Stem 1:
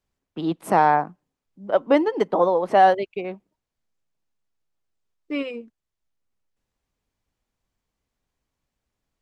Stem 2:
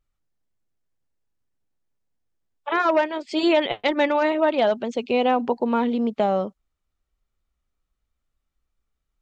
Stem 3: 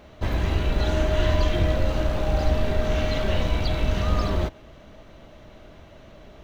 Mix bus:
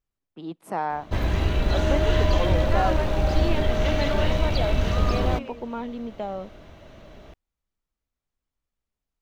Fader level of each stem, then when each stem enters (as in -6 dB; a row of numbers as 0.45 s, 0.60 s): -10.5 dB, -10.5 dB, +0.5 dB; 0.00 s, 0.00 s, 0.90 s